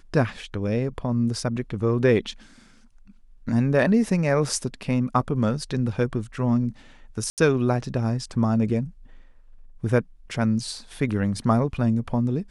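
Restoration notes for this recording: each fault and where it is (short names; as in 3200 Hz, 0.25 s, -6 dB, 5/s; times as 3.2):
7.3–7.38 gap 78 ms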